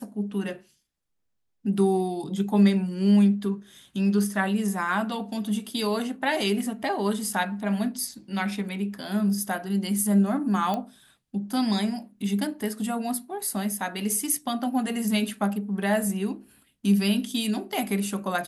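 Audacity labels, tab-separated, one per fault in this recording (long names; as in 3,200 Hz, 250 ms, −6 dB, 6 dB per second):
10.740000	10.740000	click −16 dBFS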